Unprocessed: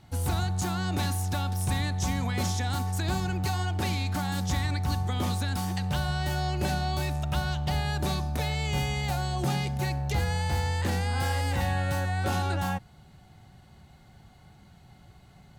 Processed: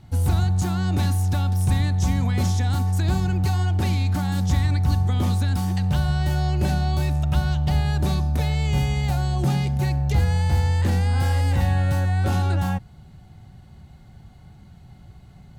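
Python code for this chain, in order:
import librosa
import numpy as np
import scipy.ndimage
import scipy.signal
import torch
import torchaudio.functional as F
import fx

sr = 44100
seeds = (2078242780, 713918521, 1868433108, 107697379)

y = fx.low_shelf(x, sr, hz=260.0, db=10.0)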